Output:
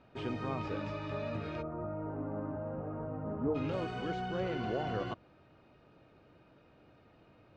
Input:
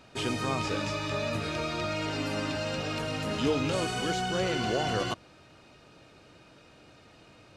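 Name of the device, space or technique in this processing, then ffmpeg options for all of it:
phone in a pocket: -filter_complex "[0:a]lowpass=3900,highshelf=f=2200:g=-12,asplit=3[s0][s1][s2];[s0]afade=t=out:st=1.61:d=0.02[s3];[s1]lowpass=f=1200:w=0.5412,lowpass=f=1200:w=1.3066,afade=t=in:st=1.61:d=0.02,afade=t=out:st=3.54:d=0.02[s4];[s2]afade=t=in:st=3.54:d=0.02[s5];[s3][s4][s5]amix=inputs=3:normalize=0,volume=0.562"

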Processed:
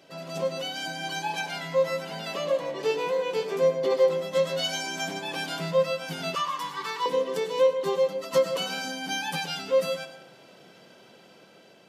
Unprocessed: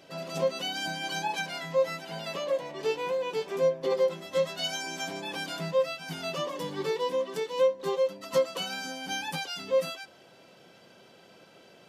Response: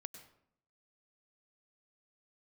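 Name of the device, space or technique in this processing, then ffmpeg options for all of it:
far laptop microphone: -filter_complex "[1:a]atrim=start_sample=2205[s0];[0:a][s0]afir=irnorm=-1:irlink=0,highpass=100,dynaudnorm=f=590:g=5:m=1.58,asettb=1/sr,asplit=3[s1][s2][s3];[s1]atrim=end=6.354[s4];[s2]atrim=start=6.35:end=7.06,asetpts=PTS-STARTPTS,afade=t=in:d=0.004:c=qsin,afade=t=out:st=0.706:d=0.004:c=qsin,lowshelf=f=770:t=q:w=3:g=-11[s5];[s3]atrim=start=7.056[s6];[s4][s5]acrossfade=d=0.004:c1=hsin:c2=qsin[s7];[s7][s6]acrossfade=d=0.004:c1=qsin:c2=hsin,volume=1.58"

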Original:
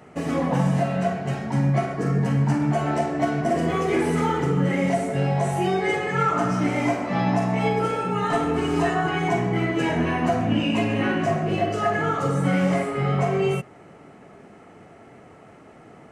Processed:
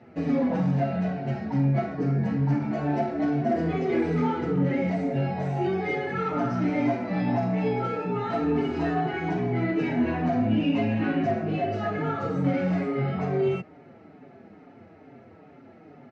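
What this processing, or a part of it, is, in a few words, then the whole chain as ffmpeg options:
barber-pole flanger into a guitar amplifier: -filter_complex "[0:a]asplit=2[s0][s1];[s1]adelay=5.4,afreqshift=-2.3[s2];[s0][s2]amix=inputs=2:normalize=1,asoftclip=type=tanh:threshold=0.158,highpass=85,equalizer=f=90:t=q:w=4:g=6,equalizer=f=260:t=q:w=4:g=6,equalizer=f=1100:t=q:w=4:g=-8,equalizer=f=1900:t=q:w=4:g=-3,equalizer=f=3100:t=q:w=4:g=-7,lowpass=f=4500:w=0.5412,lowpass=f=4500:w=1.3066"

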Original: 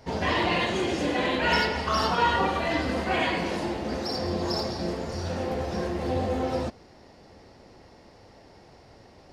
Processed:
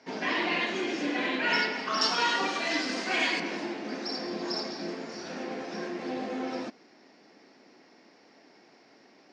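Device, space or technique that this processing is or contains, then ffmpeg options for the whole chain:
television speaker: -filter_complex "[0:a]highpass=f=210:w=0.5412,highpass=f=210:w=1.3066,equalizer=f=280:t=q:w=4:g=4,equalizer=f=530:t=q:w=4:g=-5,equalizer=f=870:t=q:w=4:g=-3,equalizer=f=1600:t=q:w=4:g=4,equalizer=f=2300:t=q:w=4:g=6,equalizer=f=5500:t=q:w=4:g=4,lowpass=f=6700:w=0.5412,lowpass=f=6700:w=1.3066,asettb=1/sr,asplit=3[s0][s1][s2];[s0]atrim=end=2.014[s3];[s1]atrim=start=2.01:end=3.4,asetpts=PTS-STARTPTS,afade=t=in:d=0.004:c=qsin,afade=t=out:st=1.386:d=0.004:c=qsin,bass=f=250:g=-3,treble=f=4000:g=15[s4];[s2]atrim=start=3.396[s5];[s3][s4]acrossfade=d=0.004:c1=hsin:c2=qsin[s6];[s6][s5]acrossfade=d=0.004:c1=qsin:c2=hsin,volume=0.596"

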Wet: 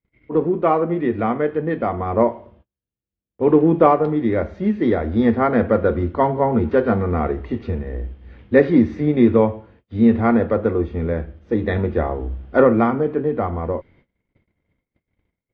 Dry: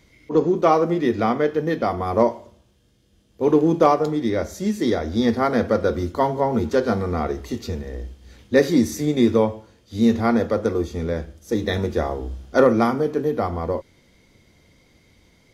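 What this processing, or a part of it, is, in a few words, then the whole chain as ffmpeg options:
action camera in a waterproof case: -af "agate=range=0.0224:threshold=0.00251:ratio=16:detection=peak,lowpass=f=2600:w=0.5412,lowpass=f=2600:w=1.3066,lowshelf=f=180:g=3,dynaudnorm=f=270:g=17:m=3.76,volume=0.891" -ar 44100 -c:a aac -b:a 64k

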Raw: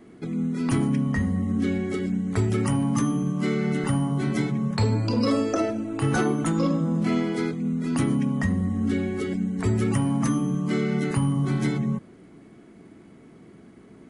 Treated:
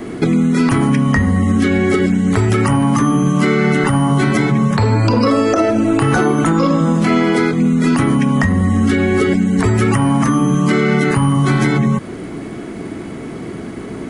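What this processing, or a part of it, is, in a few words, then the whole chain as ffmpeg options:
mastering chain: -filter_complex "[0:a]equalizer=f=190:t=o:w=0.77:g=-3.5,acrossover=split=930|2000[s0][s1][s2];[s0]acompressor=threshold=0.0251:ratio=4[s3];[s1]acompressor=threshold=0.0112:ratio=4[s4];[s2]acompressor=threshold=0.00316:ratio=4[s5];[s3][s4][s5]amix=inputs=3:normalize=0,acompressor=threshold=0.0178:ratio=2,asoftclip=type=hard:threshold=0.0668,alimiter=level_in=21.1:limit=0.891:release=50:level=0:latency=1,volume=0.668"

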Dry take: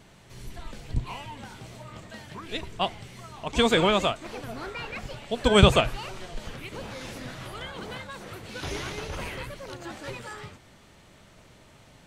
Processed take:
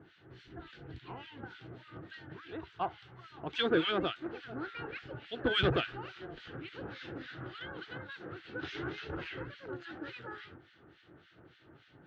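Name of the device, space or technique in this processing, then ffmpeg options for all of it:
guitar amplifier with harmonic tremolo: -filter_complex "[0:a]acrossover=split=1500[s0][s1];[s0]aeval=exprs='val(0)*(1-1/2+1/2*cos(2*PI*3.5*n/s))':c=same[s2];[s1]aeval=exprs='val(0)*(1-1/2-1/2*cos(2*PI*3.5*n/s))':c=same[s3];[s2][s3]amix=inputs=2:normalize=0,asoftclip=type=tanh:threshold=0.0944,highpass=100,equalizer=f=210:t=q:w=4:g=-9,equalizer=f=330:t=q:w=4:g=9,equalizer=f=610:t=q:w=4:g=-8,equalizer=f=1000:t=q:w=4:g=-9,equalizer=f=1500:t=q:w=4:g=7,equalizer=f=2300:t=q:w=4:g=-6,lowpass=f=3600:w=0.5412,lowpass=f=3600:w=1.3066,asettb=1/sr,asplit=3[s4][s5][s6];[s4]atrim=end=2.514[s7];[s5]atrim=start=2.51:end=3.24,asetpts=PTS-STARTPTS,afade=t=in:d=0.004:c=qsin,afade=t=out:st=0.726:d=0.004:c=qsin,equalizer=f=250:t=o:w=1:g=-11,equalizer=f=500:t=o:w=1:g=-4,equalizer=f=1000:t=o:w=1:g=7,equalizer=f=2000:t=o:w=1:g=-4[s8];[s6]atrim=start=3.236[s9];[s7][s8]acrossfade=d=0.004:c1=hsin:c2=qsin[s10];[s10][s9]acrossfade=d=0.004:c1=qsin:c2=hsin"

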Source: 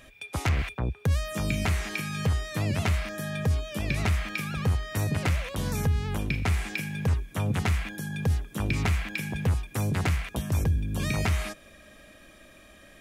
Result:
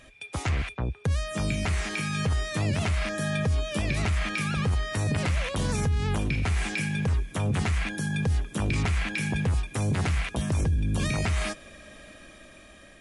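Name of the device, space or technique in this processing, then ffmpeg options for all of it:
low-bitrate web radio: -af "dynaudnorm=f=760:g=5:m=1.88,alimiter=limit=0.119:level=0:latency=1:release=15" -ar 24000 -c:a libmp3lame -b:a 48k

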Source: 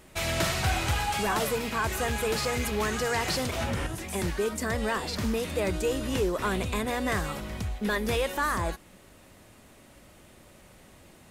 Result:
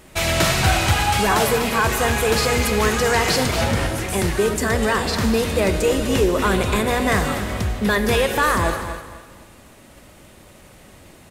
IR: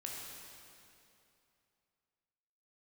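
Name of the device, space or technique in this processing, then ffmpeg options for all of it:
keyed gated reverb: -filter_complex "[0:a]asplit=3[s0][s1][s2];[1:a]atrim=start_sample=2205[s3];[s1][s3]afir=irnorm=-1:irlink=0[s4];[s2]apad=whole_len=498722[s5];[s4][s5]sidechaingate=range=0.0224:threshold=0.00282:ratio=16:detection=peak,volume=0.708[s6];[s0][s6]amix=inputs=2:normalize=0,aecho=1:1:250|500|750:0.266|0.0772|0.0224,volume=2"

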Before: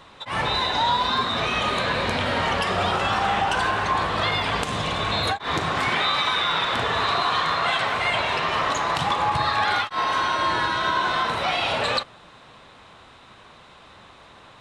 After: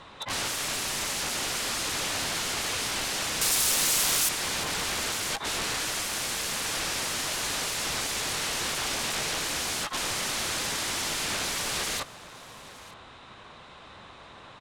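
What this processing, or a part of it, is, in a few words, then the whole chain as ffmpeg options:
overflowing digital effects unit: -filter_complex "[0:a]aeval=exprs='(mod(16.8*val(0)+1,2)-1)/16.8':c=same,lowpass=10000,asettb=1/sr,asplit=3[s0][s1][s2];[s0]atrim=end=3.414[s3];[s1]atrim=start=3.41:end=4.29,asetpts=PTS-STARTPTS,afade=t=in:d=0.004:c=qsin,afade=t=out:st=0.876:d=0.004:c=qsin,aemphasis=mode=production:type=50fm[s4];[s2]atrim=start=4.286[s5];[s3][s4]acrossfade=d=0.004:c1=hsin:c2=qsin[s6];[s6][s5]acrossfade=d=0.004:c1=qsin:c2=hsin,aecho=1:1:912:0.1"

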